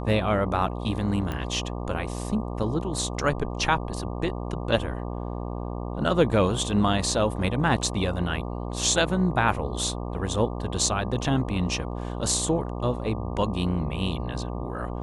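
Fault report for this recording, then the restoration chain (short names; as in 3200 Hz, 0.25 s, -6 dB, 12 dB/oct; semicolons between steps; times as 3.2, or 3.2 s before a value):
buzz 60 Hz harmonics 20 -32 dBFS
1.32 pop -18 dBFS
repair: de-click; de-hum 60 Hz, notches 20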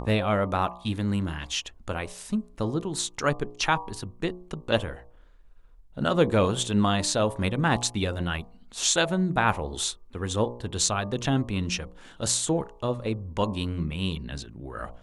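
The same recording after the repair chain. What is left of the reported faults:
none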